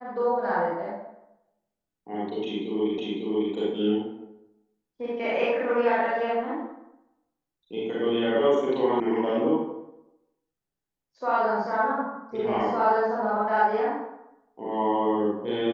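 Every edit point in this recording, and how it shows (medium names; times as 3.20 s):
2.98 s: repeat of the last 0.55 s
9.00 s: sound stops dead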